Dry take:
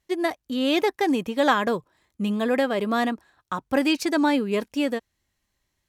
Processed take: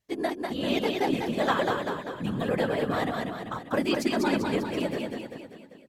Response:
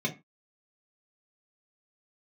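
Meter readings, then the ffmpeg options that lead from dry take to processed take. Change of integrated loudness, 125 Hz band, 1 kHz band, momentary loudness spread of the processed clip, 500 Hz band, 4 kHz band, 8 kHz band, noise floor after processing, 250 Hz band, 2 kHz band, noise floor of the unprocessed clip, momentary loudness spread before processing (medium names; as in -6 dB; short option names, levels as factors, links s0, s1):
-4.0 dB, +4.0 dB, -4.0 dB, 9 LU, -3.0 dB, -4.0 dB, -4.0 dB, -49 dBFS, -4.5 dB, -4.0 dB, -78 dBFS, 9 LU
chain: -af "aecho=1:1:196|392|588|784|980|1176|1372:0.668|0.354|0.188|0.0995|0.0527|0.0279|0.0148,afftfilt=real='hypot(re,im)*cos(2*PI*random(0))':imag='hypot(re,im)*sin(2*PI*random(1))':win_size=512:overlap=0.75"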